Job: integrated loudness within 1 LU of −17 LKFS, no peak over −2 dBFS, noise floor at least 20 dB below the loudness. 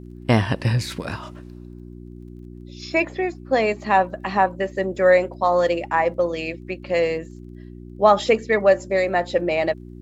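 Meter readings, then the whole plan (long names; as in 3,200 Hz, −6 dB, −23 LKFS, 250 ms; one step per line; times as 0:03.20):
crackle rate 20 per second; mains hum 60 Hz; hum harmonics up to 360 Hz; level of the hum −36 dBFS; integrated loudness −21.0 LKFS; sample peak −2.5 dBFS; target loudness −17.0 LKFS
→ click removal
hum removal 60 Hz, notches 6
level +4 dB
brickwall limiter −2 dBFS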